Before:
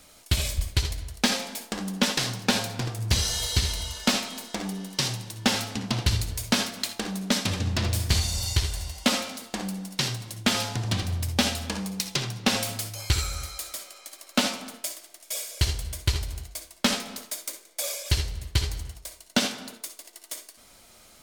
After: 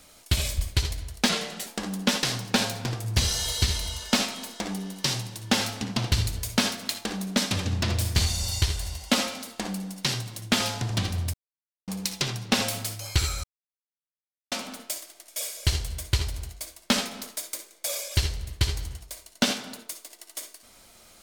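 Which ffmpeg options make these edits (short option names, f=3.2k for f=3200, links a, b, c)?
-filter_complex "[0:a]asplit=7[a][b][c][d][e][f][g];[a]atrim=end=1.294[h];[b]atrim=start=1.29:end=1.61,asetpts=PTS-STARTPTS,asetrate=37485,aresample=44100,atrim=end_sample=16602,asetpts=PTS-STARTPTS[i];[c]atrim=start=1.606:end=11.28,asetpts=PTS-STARTPTS,afade=t=out:st=9.67:d=0.004:c=hsin[j];[d]atrim=start=11.28:end=11.82,asetpts=PTS-STARTPTS,volume=0[k];[e]atrim=start=11.82:end=13.38,asetpts=PTS-STARTPTS,afade=t=in:d=0.004:c=hsin,afade=t=out:st=1.556:d=0.004:c=hsin[l];[f]atrim=start=13.38:end=14.46,asetpts=PTS-STARTPTS,volume=0[m];[g]atrim=start=14.46,asetpts=PTS-STARTPTS,afade=t=in:d=0.004:c=hsin[n];[h][i]acrossfade=d=0.004:c1=hsin:c2=hsin[o];[j][k][l][m][n]concat=n=5:v=0:a=1[p];[o][p]acrossfade=d=0.004:c1=hsin:c2=hsin"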